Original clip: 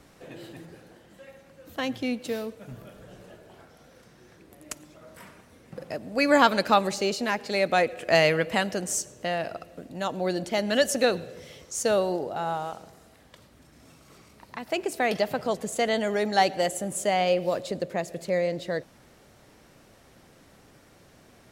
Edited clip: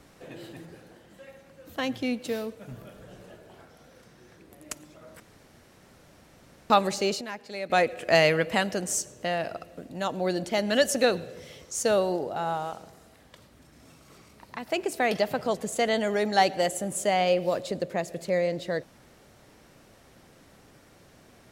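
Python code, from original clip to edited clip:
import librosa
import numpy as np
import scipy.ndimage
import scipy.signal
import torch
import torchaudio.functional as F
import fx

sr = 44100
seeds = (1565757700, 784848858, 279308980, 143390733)

y = fx.edit(x, sr, fx.room_tone_fill(start_s=5.2, length_s=1.5),
    fx.clip_gain(start_s=7.21, length_s=0.49, db=-10.0), tone=tone)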